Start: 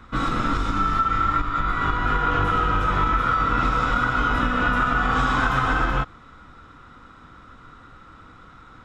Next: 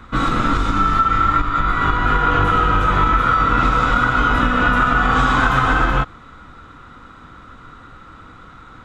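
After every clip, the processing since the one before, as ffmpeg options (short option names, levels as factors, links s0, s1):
-af "bandreject=f=5300:w=12,volume=1.88"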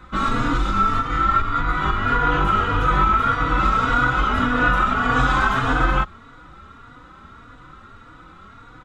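-filter_complex "[0:a]asplit=2[s0][s1];[s1]adelay=3.5,afreqshift=1.7[s2];[s0][s2]amix=inputs=2:normalize=1"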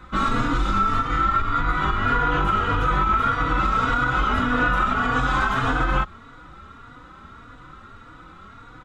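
-af "alimiter=limit=0.266:level=0:latency=1:release=122"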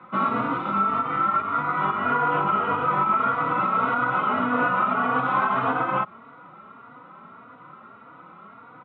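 -af "highpass=f=160:w=0.5412,highpass=f=160:w=1.3066,equalizer=f=310:t=q:w=4:g=-6,equalizer=f=640:t=q:w=4:g=5,equalizer=f=1000:t=q:w=4:g=4,equalizer=f=1700:t=q:w=4:g=-9,lowpass=f=2500:w=0.5412,lowpass=f=2500:w=1.3066"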